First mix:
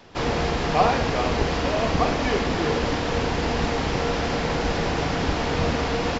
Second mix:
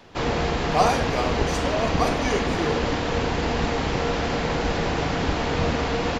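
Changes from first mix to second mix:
speech: remove low-pass filter 3,700 Hz 24 dB per octave
master: add parametric band 5,300 Hz −3 dB 0.32 octaves

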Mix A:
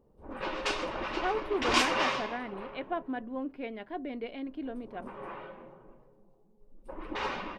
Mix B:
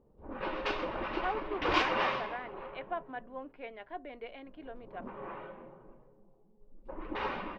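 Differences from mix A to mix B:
speech: add high-pass filter 570 Hz 12 dB per octave
master: add high-frequency loss of the air 250 metres

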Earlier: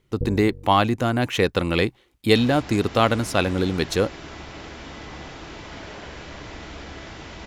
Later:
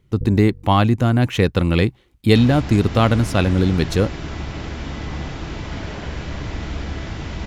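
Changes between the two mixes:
first sound −9.5 dB
second sound +4.5 dB
master: add bass and treble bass +10 dB, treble −1 dB

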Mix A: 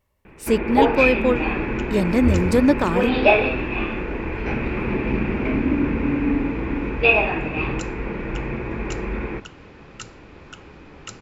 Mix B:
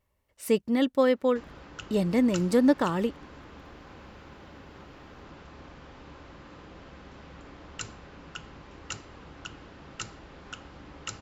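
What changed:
speech −4.5 dB
first sound: muted

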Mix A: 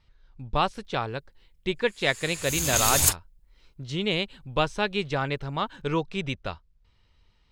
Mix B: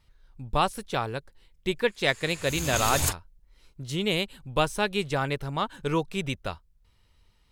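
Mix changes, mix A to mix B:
speech: remove high-frequency loss of the air 160 metres
master: add high-shelf EQ 3,600 Hz −8.5 dB

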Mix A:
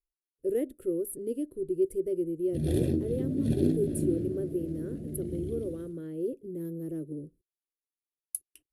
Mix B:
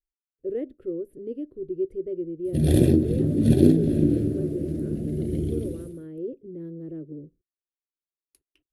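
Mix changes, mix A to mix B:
speech: add high-frequency loss of the air 250 metres
background +9.5 dB

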